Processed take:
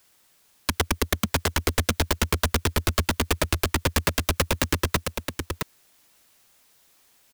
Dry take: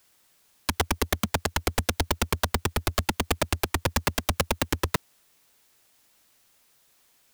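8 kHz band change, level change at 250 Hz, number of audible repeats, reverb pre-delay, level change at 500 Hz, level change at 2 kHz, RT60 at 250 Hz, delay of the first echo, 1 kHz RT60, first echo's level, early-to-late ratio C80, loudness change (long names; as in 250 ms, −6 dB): +3.0 dB, +3.0 dB, 1, no reverb audible, +2.0 dB, +3.0 dB, no reverb audible, 667 ms, no reverb audible, −6.0 dB, no reverb audible, +2.0 dB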